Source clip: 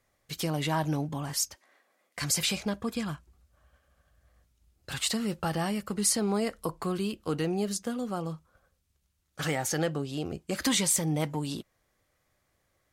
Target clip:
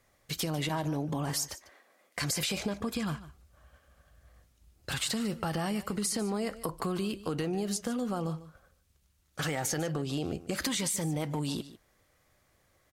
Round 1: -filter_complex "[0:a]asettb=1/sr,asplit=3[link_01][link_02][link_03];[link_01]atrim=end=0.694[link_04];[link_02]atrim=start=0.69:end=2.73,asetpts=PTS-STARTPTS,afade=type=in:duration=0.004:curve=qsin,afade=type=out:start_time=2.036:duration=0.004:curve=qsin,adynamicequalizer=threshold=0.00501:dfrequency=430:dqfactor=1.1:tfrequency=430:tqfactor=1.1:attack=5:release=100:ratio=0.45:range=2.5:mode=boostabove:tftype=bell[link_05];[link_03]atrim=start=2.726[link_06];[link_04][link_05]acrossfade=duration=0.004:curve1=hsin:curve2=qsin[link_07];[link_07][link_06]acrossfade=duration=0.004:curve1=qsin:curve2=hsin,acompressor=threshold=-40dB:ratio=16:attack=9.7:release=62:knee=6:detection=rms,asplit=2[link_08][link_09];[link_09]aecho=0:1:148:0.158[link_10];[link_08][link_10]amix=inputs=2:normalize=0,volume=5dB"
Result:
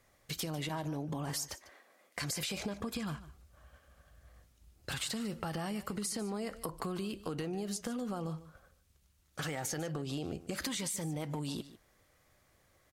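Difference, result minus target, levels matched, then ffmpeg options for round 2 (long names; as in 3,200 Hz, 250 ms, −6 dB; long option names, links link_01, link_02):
downward compressor: peak gain reduction +5.5 dB
-filter_complex "[0:a]asettb=1/sr,asplit=3[link_01][link_02][link_03];[link_01]atrim=end=0.694[link_04];[link_02]atrim=start=0.69:end=2.73,asetpts=PTS-STARTPTS,afade=type=in:duration=0.004:curve=qsin,afade=type=out:start_time=2.036:duration=0.004:curve=qsin,adynamicequalizer=threshold=0.00501:dfrequency=430:dqfactor=1.1:tfrequency=430:tqfactor=1.1:attack=5:release=100:ratio=0.45:range=2.5:mode=boostabove:tftype=bell[link_05];[link_03]atrim=start=2.726[link_06];[link_04][link_05]acrossfade=duration=0.004:curve1=hsin:curve2=qsin[link_07];[link_07][link_06]acrossfade=duration=0.004:curve1=qsin:curve2=hsin,acompressor=threshold=-34dB:ratio=16:attack=9.7:release=62:knee=6:detection=rms,asplit=2[link_08][link_09];[link_09]aecho=0:1:148:0.158[link_10];[link_08][link_10]amix=inputs=2:normalize=0,volume=5dB"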